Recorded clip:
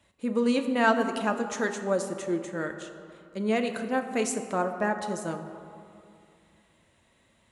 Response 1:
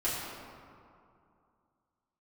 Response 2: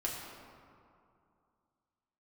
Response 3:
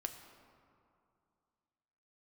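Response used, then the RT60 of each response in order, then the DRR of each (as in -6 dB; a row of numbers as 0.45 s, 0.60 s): 3; 2.5 s, 2.5 s, 2.5 s; -10.0 dB, -3.5 dB, 5.5 dB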